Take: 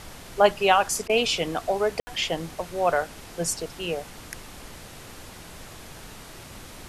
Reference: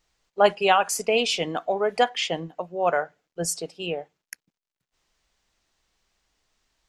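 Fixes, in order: room tone fill 2–2.07; interpolate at 1.08, 13 ms; noise print and reduce 30 dB

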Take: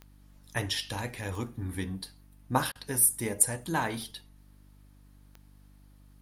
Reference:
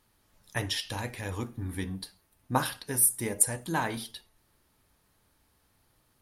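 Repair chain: de-click; de-hum 49.5 Hz, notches 6; interpolate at 2.72, 33 ms

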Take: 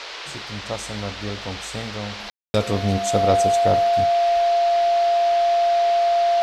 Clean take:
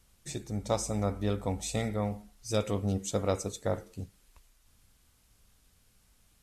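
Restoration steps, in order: notch 690 Hz, Q 30; room tone fill 2.3–2.54; noise print and reduce 30 dB; gain correction -8.5 dB, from 2.2

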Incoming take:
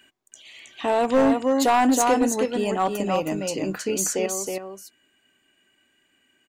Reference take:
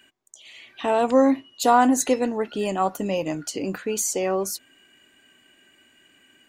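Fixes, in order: clip repair -13 dBFS; inverse comb 0.319 s -4.5 dB; gain 0 dB, from 4.26 s +9 dB

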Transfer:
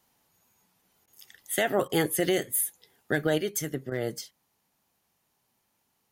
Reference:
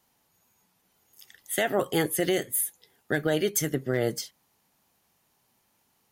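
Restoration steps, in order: interpolate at 1.06/1.88/3.9, 14 ms; gain 0 dB, from 3.38 s +4.5 dB

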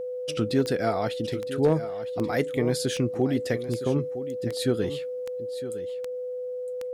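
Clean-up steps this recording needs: clip repair -13 dBFS; de-click; notch 500 Hz, Q 30; inverse comb 0.961 s -13 dB

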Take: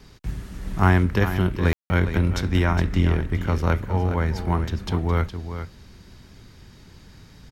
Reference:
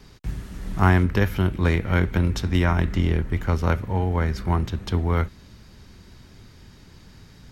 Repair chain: room tone fill 1.73–1.9; inverse comb 0.413 s -10 dB

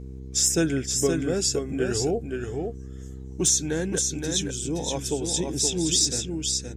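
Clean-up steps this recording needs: clip repair -12 dBFS; de-hum 65.3 Hz, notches 7; inverse comb 0.521 s -5 dB

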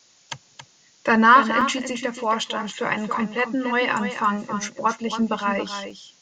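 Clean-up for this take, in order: interpolate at 1.61/5.9, 4.2 ms; noise print and reduce 10 dB; inverse comb 0.276 s -9 dB

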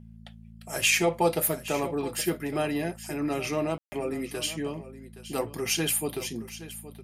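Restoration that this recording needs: de-hum 55.5 Hz, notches 4; room tone fill 3.78–3.92; inverse comb 0.82 s -15 dB

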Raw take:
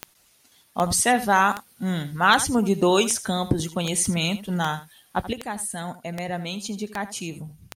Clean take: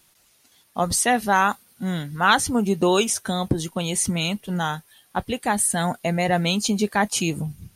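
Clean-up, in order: de-click; inverse comb 80 ms -14.5 dB; gain correction +9 dB, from 5.33

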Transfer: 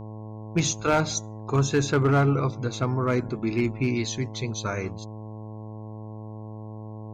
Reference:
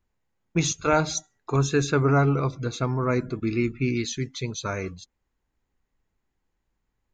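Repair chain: clip repair -15 dBFS; de-hum 108.2 Hz, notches 10

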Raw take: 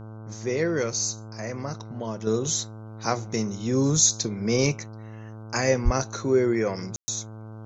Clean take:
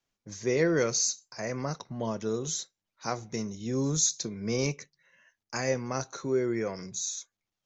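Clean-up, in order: de-hum 109.5 Hz, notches 14; de-plosive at 5.84; room tone fill 6.96–7.08; gain 0 dB, from 2.27 s -6.5 dB

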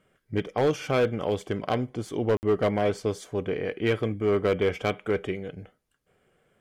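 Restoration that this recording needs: clip repair -17 dBFS; interpolate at 2.37, 59 ms

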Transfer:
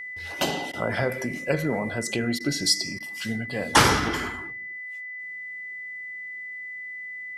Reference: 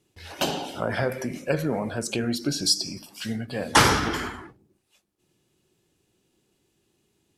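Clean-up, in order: clip repair -5.5 dBFS; notch 2000 Hz, Q 30; interpolate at 0.72/2.39/2.99, 12 ms

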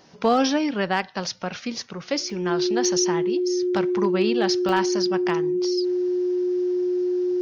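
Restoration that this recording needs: clip repair -11.5 dBFS; notch 360 Hz, Q 30; interpolate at 2.3/4.69, 1.3 ms

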